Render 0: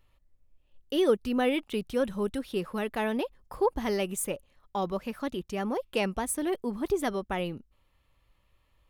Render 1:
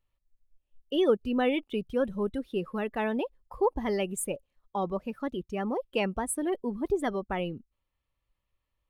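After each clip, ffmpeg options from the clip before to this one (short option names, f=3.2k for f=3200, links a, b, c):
-af "afftdn=nr=14:nf=-38"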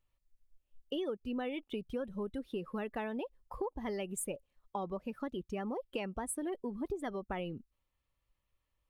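-af "acompressor=threshold=-34dB:ratio=6,volume=-1dB"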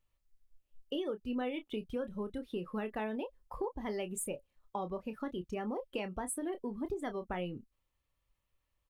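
-filter_complex "[0:a]asplit=2[a][b];[b]adelay=28,volume=-10dB[c];[a][c]amix=inputs=2:normalize=0"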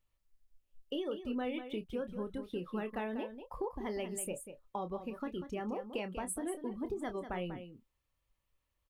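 -af "aecho=1:1:192:0.316,volume=-1dB"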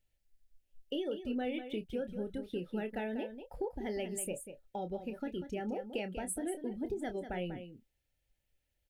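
-af "asuperstop=centerf=1100:order=4:qfactor=1.9,volume=1dB"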